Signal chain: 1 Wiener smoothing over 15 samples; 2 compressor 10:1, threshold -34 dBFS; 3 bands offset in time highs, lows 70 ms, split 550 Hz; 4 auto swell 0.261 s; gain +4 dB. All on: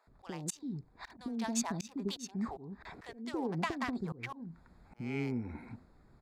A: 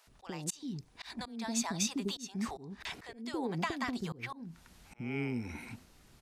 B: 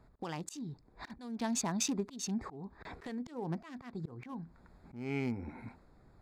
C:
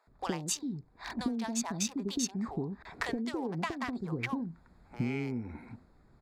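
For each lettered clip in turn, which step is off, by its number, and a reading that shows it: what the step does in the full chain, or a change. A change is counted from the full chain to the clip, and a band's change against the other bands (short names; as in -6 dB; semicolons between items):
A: 1, 4 kHz band +5.0 dB; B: 3, momentary loudness spread change +2 LU; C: 4, crest factor change -3.5 dB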